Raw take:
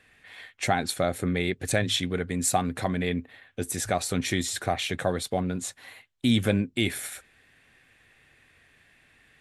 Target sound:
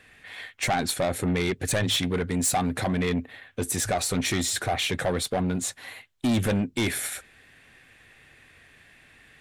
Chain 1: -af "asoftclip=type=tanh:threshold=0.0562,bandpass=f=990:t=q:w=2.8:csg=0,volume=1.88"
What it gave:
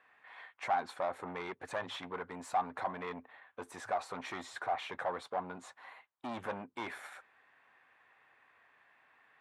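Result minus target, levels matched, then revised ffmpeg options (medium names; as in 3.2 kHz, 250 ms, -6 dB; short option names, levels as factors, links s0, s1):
1 kHz band +8.5 dB
-af "asoftclip=type=tanh:threshold=0.0562,volume=1.88"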